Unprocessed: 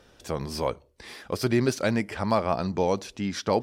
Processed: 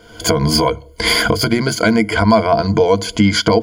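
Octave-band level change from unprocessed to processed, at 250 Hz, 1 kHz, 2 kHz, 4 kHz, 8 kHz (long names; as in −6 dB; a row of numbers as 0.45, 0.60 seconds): +12.5, +11.5, +16.5, +19.5, +16.0 decibels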